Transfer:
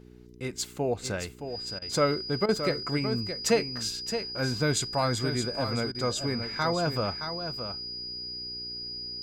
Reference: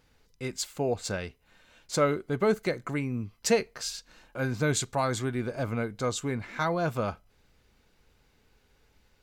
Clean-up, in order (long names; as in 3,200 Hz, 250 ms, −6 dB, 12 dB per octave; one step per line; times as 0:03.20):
hum removal 60.7 Hz, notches 7
notch filter 4,900 Hz, Q 30
repair the gap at 0:01.79/0:02.46/0:05.92, 26 ms
echo removal 619 ms −8.5 dB